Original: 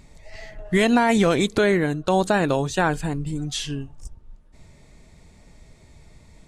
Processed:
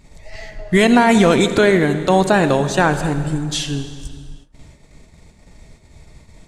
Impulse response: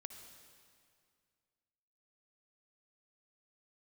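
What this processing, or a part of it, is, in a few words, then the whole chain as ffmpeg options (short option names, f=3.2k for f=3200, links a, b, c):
keyed gated reverb: -filter_complex "[0:a]asplit=3[a][b][c];[1:a]atrim=start_sample=2205[d];[b][d]afir=irnorm=-1:irlink=0[e];[c]apad=whole_len=285641[f];[e][f]sidechaingate=range=-33dB:threshold=-48dB:ratio=16:detection=peak,volume=9.5dB[g];[a][g]amix=inputs=2:normalize=0,volume=-2.5dB"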